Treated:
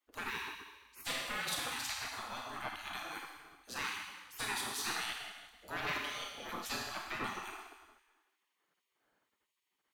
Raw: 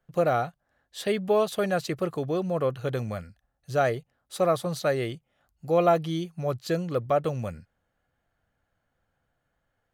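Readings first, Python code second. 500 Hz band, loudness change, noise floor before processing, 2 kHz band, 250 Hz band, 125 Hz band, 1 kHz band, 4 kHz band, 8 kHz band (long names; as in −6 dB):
−25.5 dB, −12.0 dB, −78 dBFS, −1.5 dB, −19.5 dB, −24.0 dB, −11.5 dB, +1.0 dB, +1.5 dB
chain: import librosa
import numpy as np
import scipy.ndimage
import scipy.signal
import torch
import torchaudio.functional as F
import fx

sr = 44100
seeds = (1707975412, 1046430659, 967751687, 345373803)

y = 10.0 ** (-20.5 / 20.0) * np.tanh(x / 10.0 ** (-20.5 / 20.0))
y = fx.rev_schroeder(y, sr, rt60_s=1.3, comb_ms=26, drr_db=-0.5)
y = fx.spec_gate(y, sr, threshold_db=-20, keep='weak')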